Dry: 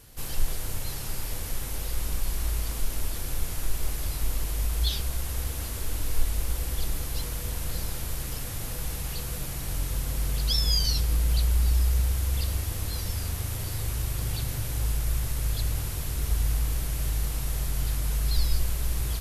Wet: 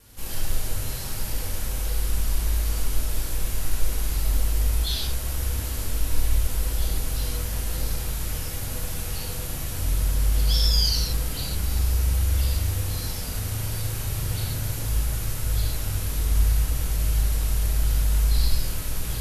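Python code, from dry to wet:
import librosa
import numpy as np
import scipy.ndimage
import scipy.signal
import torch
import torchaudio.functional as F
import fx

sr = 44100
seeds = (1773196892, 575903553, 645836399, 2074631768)

y = fx.vibrato(x, sr, rate_hz=0.97, depth_cents=11.0)
y = fx.rev_gated(y, sr, seeds[0], gate_ms=170, shape='flat', drr_db=-4.5)
y = y * librosa.db_to_amplitude(-3.0)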